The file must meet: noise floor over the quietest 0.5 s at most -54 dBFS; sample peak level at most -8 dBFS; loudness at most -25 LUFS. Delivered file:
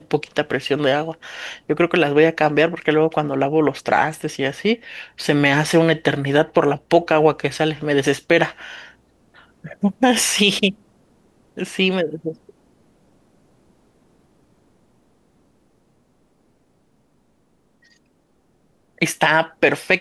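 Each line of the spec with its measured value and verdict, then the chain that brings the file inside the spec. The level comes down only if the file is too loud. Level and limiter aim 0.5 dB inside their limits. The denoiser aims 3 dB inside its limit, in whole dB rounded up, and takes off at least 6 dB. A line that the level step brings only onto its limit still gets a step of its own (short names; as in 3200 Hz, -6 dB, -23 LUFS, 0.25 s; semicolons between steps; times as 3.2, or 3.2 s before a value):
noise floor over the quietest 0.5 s -61 dBFS: OK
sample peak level -2.0 dBFS: fail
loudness -18.5 LUFS: fail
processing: gain -7 dB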